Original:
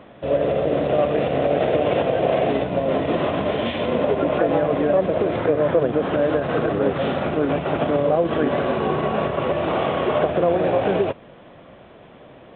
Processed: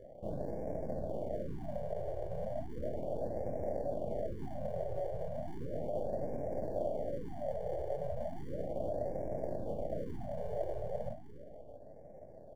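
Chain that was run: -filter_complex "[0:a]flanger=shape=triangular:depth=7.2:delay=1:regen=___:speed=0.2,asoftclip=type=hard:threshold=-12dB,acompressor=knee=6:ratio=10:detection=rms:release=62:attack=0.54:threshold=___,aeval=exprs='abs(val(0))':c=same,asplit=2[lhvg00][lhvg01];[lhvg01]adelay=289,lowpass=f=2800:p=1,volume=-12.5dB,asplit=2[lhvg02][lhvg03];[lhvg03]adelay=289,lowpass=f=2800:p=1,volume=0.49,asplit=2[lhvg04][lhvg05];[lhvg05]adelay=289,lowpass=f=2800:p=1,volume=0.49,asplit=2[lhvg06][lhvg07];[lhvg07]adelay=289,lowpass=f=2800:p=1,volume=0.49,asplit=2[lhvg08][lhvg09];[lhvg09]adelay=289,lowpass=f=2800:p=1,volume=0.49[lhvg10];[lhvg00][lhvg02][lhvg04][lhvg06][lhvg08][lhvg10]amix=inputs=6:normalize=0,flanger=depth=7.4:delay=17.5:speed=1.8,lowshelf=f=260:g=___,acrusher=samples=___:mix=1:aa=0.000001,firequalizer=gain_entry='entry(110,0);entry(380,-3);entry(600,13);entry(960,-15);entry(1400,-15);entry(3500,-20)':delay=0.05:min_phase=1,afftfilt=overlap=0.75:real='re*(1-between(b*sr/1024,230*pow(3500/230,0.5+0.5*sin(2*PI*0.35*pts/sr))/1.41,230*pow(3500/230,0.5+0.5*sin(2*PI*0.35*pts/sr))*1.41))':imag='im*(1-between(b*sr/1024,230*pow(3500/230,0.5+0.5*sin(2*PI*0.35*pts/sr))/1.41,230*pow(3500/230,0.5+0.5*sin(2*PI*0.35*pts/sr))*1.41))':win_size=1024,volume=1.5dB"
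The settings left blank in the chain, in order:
-23, -27dB, -11.5, 34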